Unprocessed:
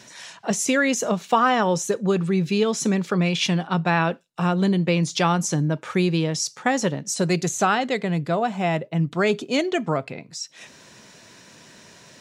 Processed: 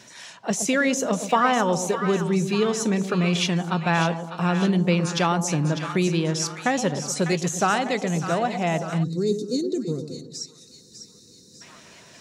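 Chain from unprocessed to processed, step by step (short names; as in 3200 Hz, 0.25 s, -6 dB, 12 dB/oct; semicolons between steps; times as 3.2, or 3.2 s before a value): split-band echo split 930 Hz, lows 0.119 s, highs 0.599 s, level -9 dB; spectral gain 9.04–11.62, 520–3600 Hz -26 dB; gain -1.5 dB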